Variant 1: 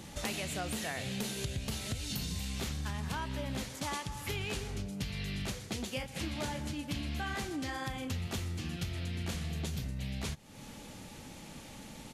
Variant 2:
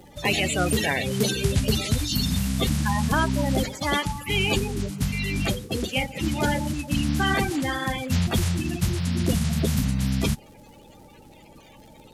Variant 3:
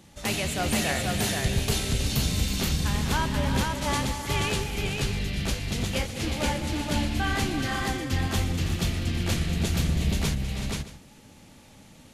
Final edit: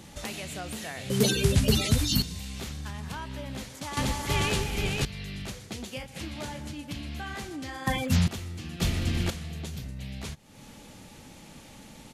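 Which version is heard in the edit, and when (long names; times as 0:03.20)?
1
0:01.10–0:02.22: punch in from 2
0:03.97–0:05.05: punch in from 3
0:07.87–0:08.28: punch in from 2
0:08.80–0:09.30: punch in from 3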